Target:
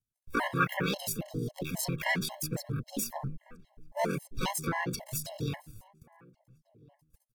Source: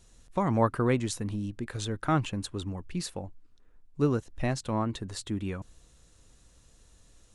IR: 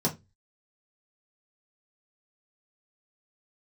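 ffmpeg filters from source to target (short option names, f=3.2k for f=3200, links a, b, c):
-filter_complex "[0:a]asplit=4[a][b][c][d];[b]asetrate=35002,aresample=44100,atempo=1.25992,volume=-2dB[e];[c]asetrate=58866,aresample=44100,atempo=0.749154,volume=-7dB[f];[d]asetrate=66075,aresample=44100,atempo=0.66742,volume=-18dB[g];[a][e][f][g]amix=inputs=4:normalize=0,bandreject=f=50:t=h:w=6,bandreject=f=100:t=h:w=6,bandreject=f=150:t=h:w=6,bandreject=f=200:t=h:w=6,bandreject=f=250:t=h:w=6,agate=range=-39dB:threshold=-49dB:ratio=16:detection=peak,equalizer=f=85:t=o:w=1.5:g=10,acrossover=split=450|3000[h][i][j];[h]acompressor=threshold=-28dB:ratio=10[k];[k][i][j]amix=inputs=3:normalize=0,acrossover=split=220|2500[l][m][n];[n]alimiter=level_in=2.5dB:limit=-24dB:level=0:latency=1:release=377,volume=-2.5dB[o];[l][m][o]amix=inputs=3:normalize=0,asetrate=68011,aresample=44100,atempo=0.64842,aemphasis=mode=production:type=cd,asplit=2[p][q];[q]adelay=1399,volume=-24dB,highshelf=f=4k:g=-31.5[r];[p][r]amix=inputs=2:normalize=0,afftfilt=real='re*gt(sin(2*PI*3.7*pts/sr)*(1-2*mod(floor(b*sr/1024/550),2)),0)':imag='im*gt(sin(2*PI*3.7*pts/sr)*(1-2*mod(floor(b*sr/1024/550),2)),0)':win_size=1024:overlap=0.75"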